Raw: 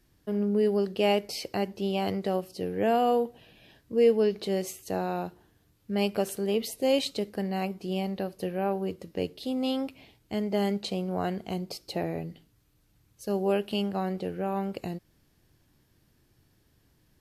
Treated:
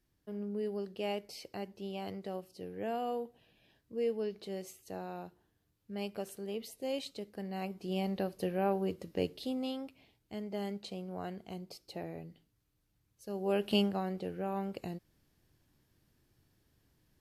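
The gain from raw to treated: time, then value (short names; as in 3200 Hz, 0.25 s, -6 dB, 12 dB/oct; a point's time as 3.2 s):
7.27 s -12 dB
8.12 s -2.5 dB
9.37 s -2.5 dB
9.79 s -11 dB
13.33 s -11 dB
13.76 s +1.5 dB
14.02 s -6 dB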